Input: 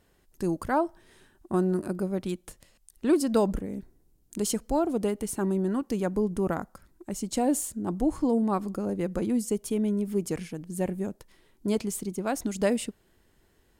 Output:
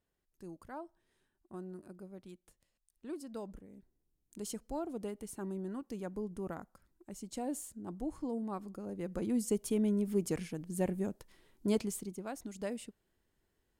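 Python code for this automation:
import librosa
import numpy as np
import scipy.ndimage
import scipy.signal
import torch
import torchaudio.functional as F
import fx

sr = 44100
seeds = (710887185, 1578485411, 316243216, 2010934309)

y = fx.gain(x, sr, db=fx.line((3.7, -20.0), (4.5, -13.0), (8.83, -13.0), (9.49, -4.0), (11.76, -4.0), (12.36, -14.0)))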